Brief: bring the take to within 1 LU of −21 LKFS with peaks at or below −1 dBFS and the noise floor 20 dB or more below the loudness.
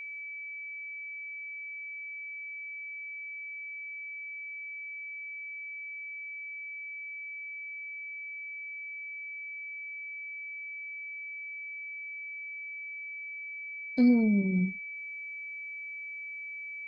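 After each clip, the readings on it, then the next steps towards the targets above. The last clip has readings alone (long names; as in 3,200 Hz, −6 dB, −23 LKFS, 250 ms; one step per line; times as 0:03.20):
interfering tone 2,300 Hz; level of the tone −38 dBFS; integrated loudness −35.5 LKFS; sample peak −15.0 dBFS; target loudness −21.0 LKFS
→ notch filter 2,300 Hz, Q 30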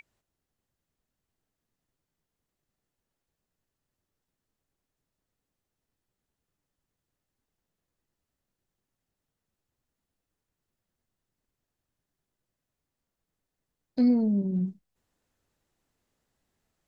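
interfering tone none found; integrated loudness −26.0 LKFS; sample peak −15.5 dBFS; target loudness −21.0 LKFS
→ level +5 dB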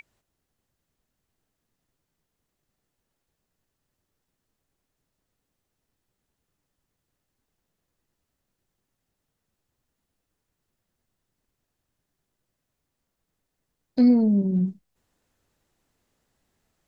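integrated loudness −21.0 LKFS; sample peak −10.5 dBFS; background noise floor −82 dBFS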